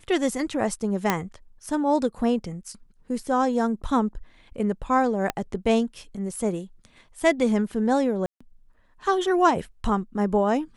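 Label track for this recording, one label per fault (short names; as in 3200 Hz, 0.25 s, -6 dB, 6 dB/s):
1.100000	1.100000	pop -6 dBFS
5.300000	5.300000	pop -10 dBFS
8.260000	8.400000	gap 0.145 s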